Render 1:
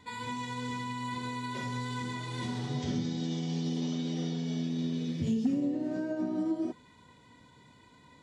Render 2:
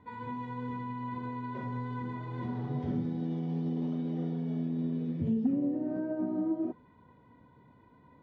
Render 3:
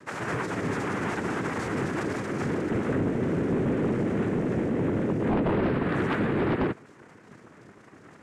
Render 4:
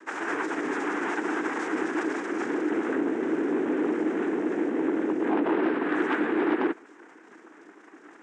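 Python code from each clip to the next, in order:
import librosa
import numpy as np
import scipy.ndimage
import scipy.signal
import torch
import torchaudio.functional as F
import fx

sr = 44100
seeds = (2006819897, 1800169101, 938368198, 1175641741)

y1 = scipy.signal.sosfilt(scipy.signal.butter(2, 1200.0, 'lowpass', fs=sr, output='sos'), x)
y2 = fx.noise_vocoder(y1, sr, seeds[0], bands=3)
y2 = fx.fold_sine(y2, sr, drive_db=10, ceiling_db=-15.5)
y2 = y2 * librosa.db_to_amplitude(-5.0)
y3 = fx.cabinet(y2, sr, low_hz=290.0, low_slope=24, high_hz=8400.0, hz=(310.0, 570.0, 850.0, 1600.0, 4400.0), db=(8, -6, 3, 4, -7))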